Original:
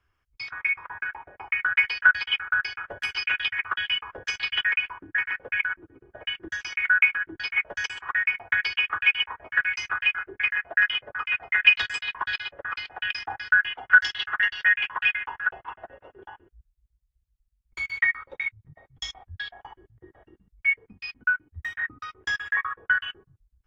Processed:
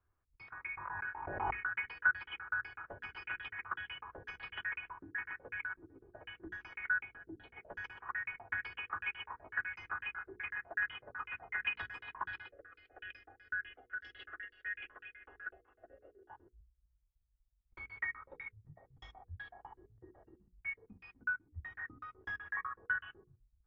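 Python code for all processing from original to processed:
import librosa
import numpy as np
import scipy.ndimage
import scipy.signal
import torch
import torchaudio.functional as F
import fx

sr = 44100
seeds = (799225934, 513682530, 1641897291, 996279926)

y = fx.chain(x, sr, fx.doubler(ms=21.0, db=-3),
    fx.pre_swell(db_per_s=37.0), at=(0.71, 1.65))
y = fx.chain(y, sr, fx.brickwall_lowpass(high_hz=4400.0),
    fx.band_shelf(hz=1600.0, db=-12.5, octaves=1.7), at=(7.0, 7.69))
y = fx.chain(y, sr, fx.tremolo(hz=1.7, depth=0.67),
    fx.fixed_phaser(hz=390.0, stages=4), at=(12.46, 16.3))
y = scipy.signal.sosfilt(scipy.signal.butter(2, 1100.0, 'lowpass', fs=sr, output='sos'), y)
y = fx.hum_notches(y, sr, base_hz=60, count=8)
y = fx.dynamic_eq(y, sr, hz=530.0, q=1.4, threshold_db=-51.0, ratio=4.0, max_db=-6)
y = y * librosa.db_to_amplitude(-5.5)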